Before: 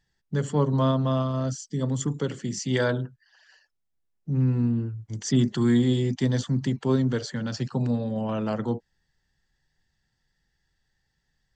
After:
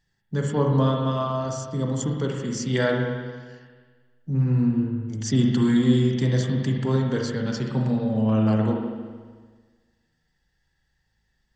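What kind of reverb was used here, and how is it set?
spring tank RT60 1.5 s, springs 37/55 ms, chirp 70 ms, DRR 0 dB

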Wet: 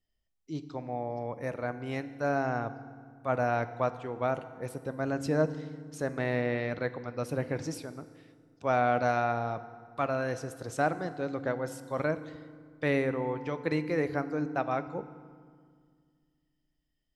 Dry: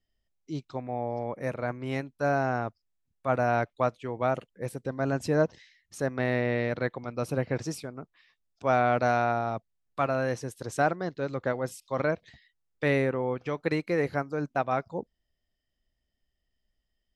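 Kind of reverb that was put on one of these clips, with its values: FDN reverb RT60 1.9 s, low-frequency decay 1.45×, high-frequency decay 0.7×, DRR 11.5 dB; gain -3 dB

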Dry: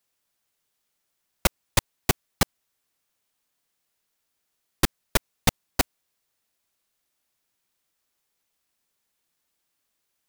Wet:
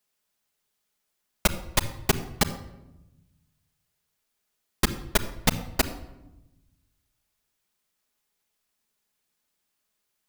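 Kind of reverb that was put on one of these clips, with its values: shoebox room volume 3800 m³, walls furnished, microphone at 1.4 m; gain -1.5 dB

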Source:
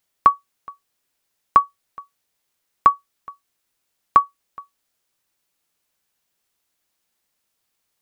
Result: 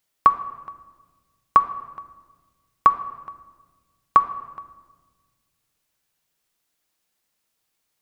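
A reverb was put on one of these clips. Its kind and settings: shoebox room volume 1300 m³, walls mixed, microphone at 0.52 m; gain -1 dB

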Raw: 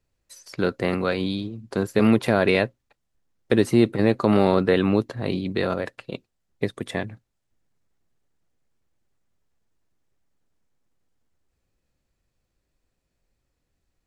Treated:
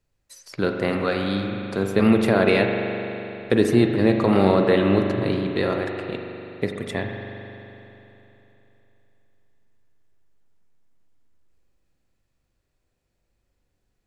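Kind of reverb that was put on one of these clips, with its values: spring tank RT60 3.3 s, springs 41 ms, chirp 40 ms, DRR 2.5 dB

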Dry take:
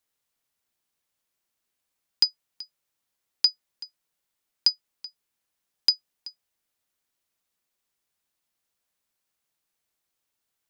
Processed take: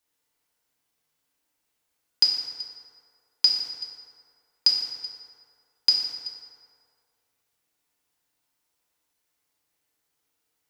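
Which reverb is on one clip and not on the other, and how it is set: FDN reverb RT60 2.2 s, low-frequency decay 0.75×, high-frequency decay 0.5×, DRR -3 dB

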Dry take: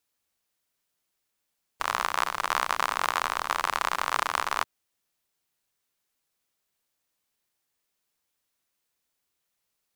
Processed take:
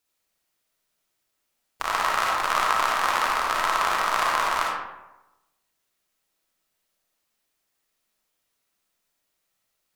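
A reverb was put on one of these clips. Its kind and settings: digital reverb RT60 1 s, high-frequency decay 0.55×, pre-delay 15 ms, DRR -3 dB

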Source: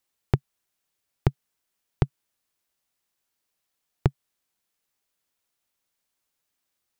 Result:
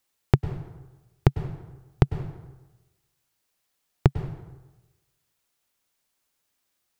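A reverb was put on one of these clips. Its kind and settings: plate-style reverb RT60 1.1 s, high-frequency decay 0.65×, pre-delay 90 ms, DRR 11 dB; gain +3.5 dB

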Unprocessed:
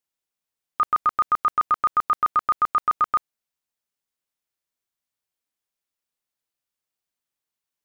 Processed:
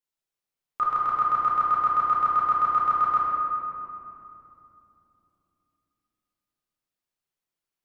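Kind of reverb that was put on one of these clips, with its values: shoebox room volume 130 m³, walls hard, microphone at 0.74 m; gain -7 dB

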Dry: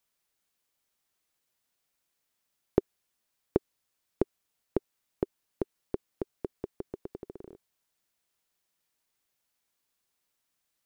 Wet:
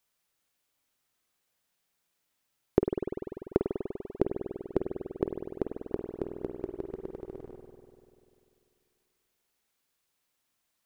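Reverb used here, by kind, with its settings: spring tank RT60 2.6 s, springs 49 ms, chirp 35 ms, DRR 3 dB; gain +1 dB

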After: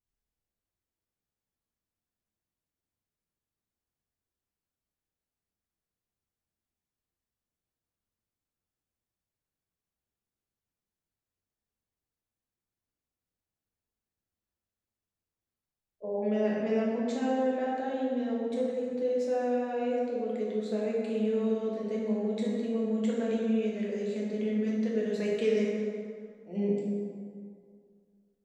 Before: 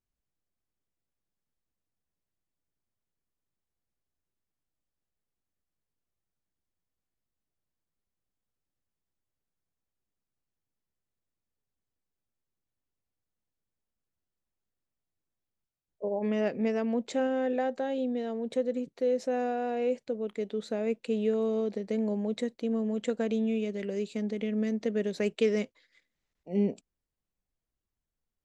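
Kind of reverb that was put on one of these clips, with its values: plate-style reverb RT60 2.2 s, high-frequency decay 0.55×, DRR -5 dB; gain -7 dB

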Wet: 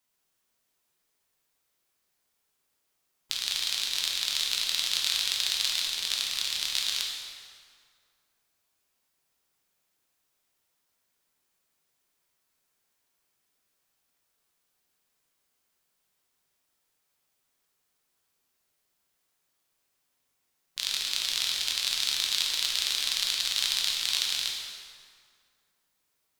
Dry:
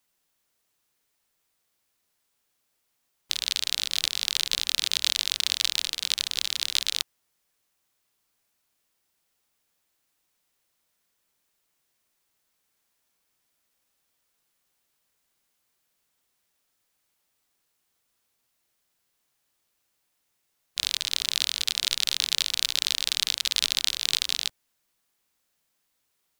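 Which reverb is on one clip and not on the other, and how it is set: plate-style reverb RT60 2.1 s, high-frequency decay 0.7×, DRR -2 dB; gain -5 dB

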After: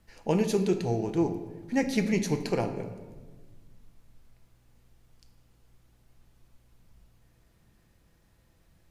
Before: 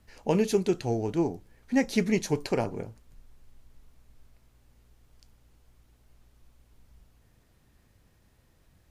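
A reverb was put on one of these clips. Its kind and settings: shoebox room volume 1200 m³, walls mixed, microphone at 0.74 m; gain -1.5 dB

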